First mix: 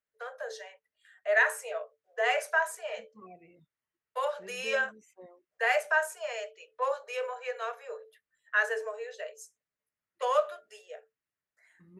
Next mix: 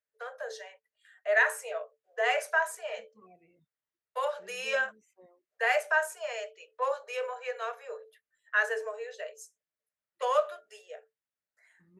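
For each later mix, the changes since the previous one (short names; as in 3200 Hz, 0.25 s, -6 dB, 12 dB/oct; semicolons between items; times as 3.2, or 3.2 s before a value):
second voice -7.0 dB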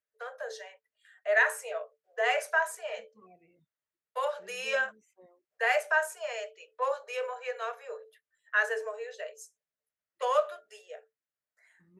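none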